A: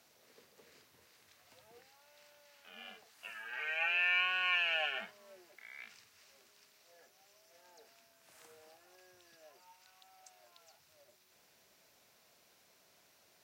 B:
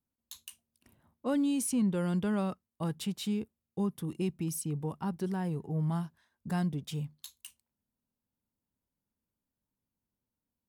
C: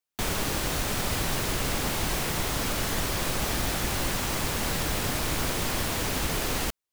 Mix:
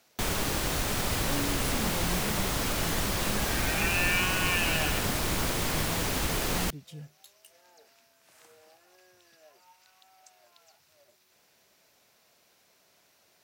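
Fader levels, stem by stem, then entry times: +2.5, −8.0, −1.0 decibels; 0.00, 0.00, 0.00 seconds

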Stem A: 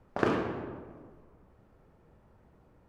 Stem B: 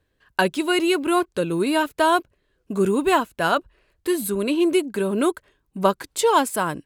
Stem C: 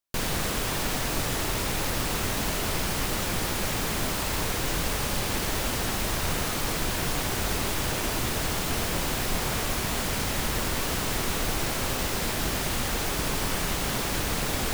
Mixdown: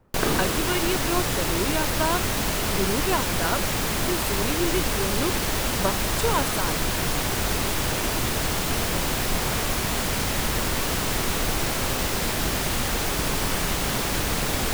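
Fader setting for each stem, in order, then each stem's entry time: +1.5, −7.5, +3.0 decibels; 0.00, 0.00, 0.00 seconds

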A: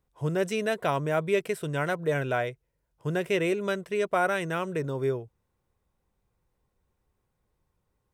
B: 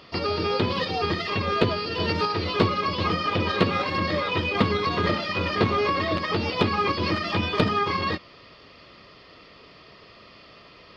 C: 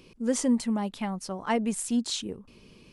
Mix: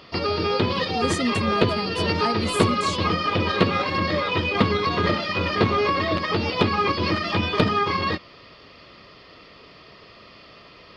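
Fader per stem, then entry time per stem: muted, +2.0 dB, −1.5 dB; muted, 0.00 s, 0.75 s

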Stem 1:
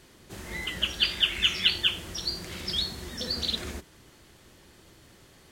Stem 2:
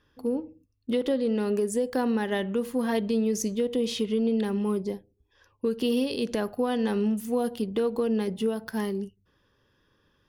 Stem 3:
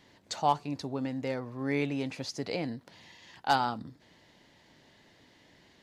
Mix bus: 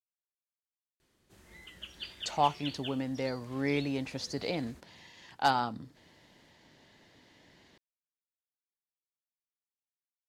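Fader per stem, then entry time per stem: −18.0 dB, muted, −0.5 dB; 1.00 s, muted, 1.95 s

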